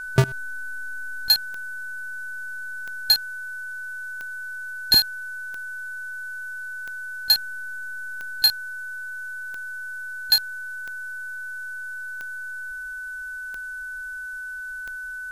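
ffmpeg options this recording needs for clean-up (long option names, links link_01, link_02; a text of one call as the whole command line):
ffmpeg -i in.wav -af "adeclick=threshold=4,bandreject=frequency=1500:width=30,afftdn=noise_reduction=30:noise_floor=-34" out.wav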